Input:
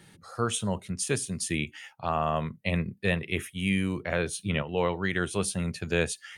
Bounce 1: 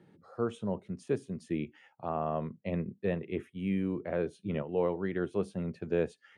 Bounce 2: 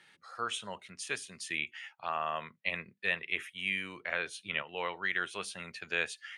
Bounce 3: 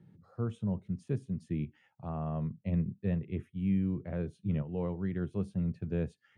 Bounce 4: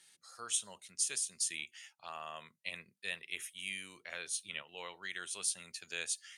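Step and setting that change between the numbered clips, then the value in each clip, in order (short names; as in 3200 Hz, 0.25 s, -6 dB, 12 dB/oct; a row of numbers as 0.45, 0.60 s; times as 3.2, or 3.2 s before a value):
band-pass, frequency: 350, 2100, 140, 6900 Hz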